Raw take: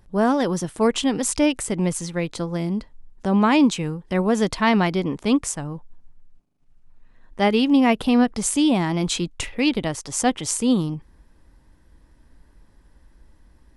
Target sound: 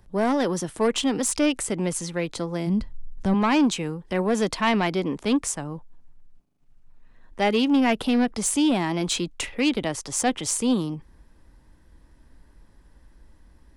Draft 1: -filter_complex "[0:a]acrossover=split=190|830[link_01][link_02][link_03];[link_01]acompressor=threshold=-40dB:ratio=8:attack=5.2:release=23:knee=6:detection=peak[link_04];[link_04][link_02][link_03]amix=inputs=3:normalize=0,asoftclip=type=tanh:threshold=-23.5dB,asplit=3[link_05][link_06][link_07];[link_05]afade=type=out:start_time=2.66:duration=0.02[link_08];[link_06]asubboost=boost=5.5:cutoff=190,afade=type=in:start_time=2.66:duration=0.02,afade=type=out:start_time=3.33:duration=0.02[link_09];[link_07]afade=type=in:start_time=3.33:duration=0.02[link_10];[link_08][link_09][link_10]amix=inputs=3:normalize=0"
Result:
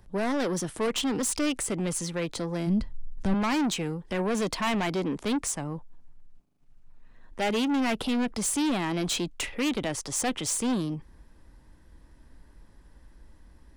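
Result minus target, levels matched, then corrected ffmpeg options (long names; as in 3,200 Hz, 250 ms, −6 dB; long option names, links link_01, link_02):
soft clipping: distortion +9 dB
-filter_complex "[0:a]acrossover=split=190|830[link_01][link_02][link_03];[link_01]acompressor=threshold=-40dB:ratio=8:attack=5.2:release=23:knee=6:detection=peak[link_04];[link_04][link_02][link_03]amix=inputs=3:normalize=0,asoftclip=type=tanh:threshold=-13.5dB,asplit=3[link_05][link_06][link_07];[link_05]afade=type=out:start_time=2.66:duration=0.02[link_08];[link_06]asubboost=boost=5.5:cutoff=190,afade=type=in:start_time=2.66:duration=0.02,afade=type=out:start_time=3.33:duration=0.02[link_09];[link_07]afade=type=in:start_time=3.33:duration=0.02[link_10];[link_08][link_09][link_10]amix=inputs=3:normalize=0"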